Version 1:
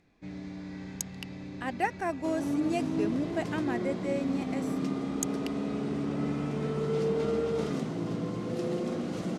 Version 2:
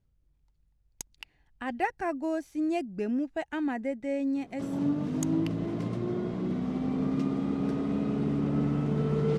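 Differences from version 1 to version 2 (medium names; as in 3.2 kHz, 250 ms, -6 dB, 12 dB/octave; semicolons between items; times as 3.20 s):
first sound: muted; second sound: entry +2.35 s; master: add tone controls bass +7 dB, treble -6 dB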